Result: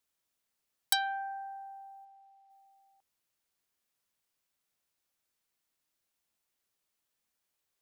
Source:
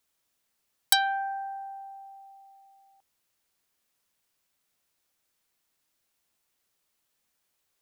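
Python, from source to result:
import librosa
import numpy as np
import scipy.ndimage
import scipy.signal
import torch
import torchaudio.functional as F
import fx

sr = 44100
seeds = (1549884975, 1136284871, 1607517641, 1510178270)

y = fx.bandpass_q(x, sr, hz=1900.0, q=0.54, at=(2.04, 2.49), fade=0.02)
y = F.gain(torch.from_numpy(y), -6.5).numpy()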